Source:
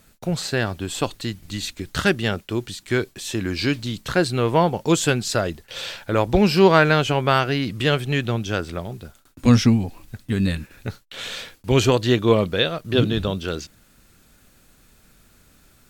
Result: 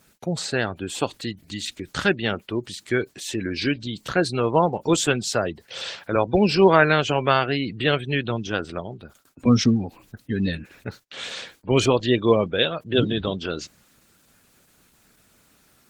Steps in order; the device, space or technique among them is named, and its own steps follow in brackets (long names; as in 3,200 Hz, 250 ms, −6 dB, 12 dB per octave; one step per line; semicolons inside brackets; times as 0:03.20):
0:04.89–0:06.16: high-pass filter 63 Hz 24 dB per octave
noise-suppressed video call (high-pass filter 170 Hz 6 dB per octave; gate on every frequency bin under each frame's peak −25 dB strong; Opus 16 kbit/s 48,000 Hz)